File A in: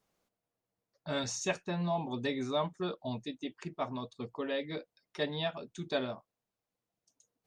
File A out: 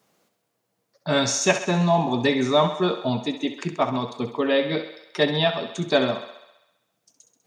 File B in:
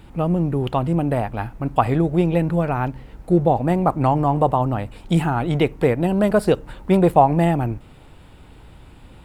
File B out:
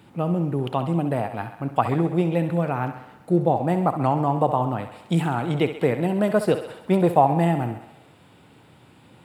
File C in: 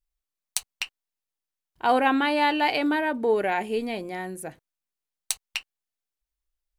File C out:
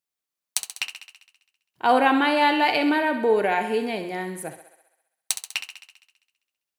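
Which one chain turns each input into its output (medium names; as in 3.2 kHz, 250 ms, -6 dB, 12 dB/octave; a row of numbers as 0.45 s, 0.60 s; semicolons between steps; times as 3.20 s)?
high-pass 110 Hz 24 dB/octave; on a send: thinning echo 66 ms, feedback 66%, high-pass 310 Hz, level -10 dB; on the sum: normalise loudness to -23 LUFS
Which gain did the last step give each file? +13.0 dB, -3.5 dB, +2.5 dB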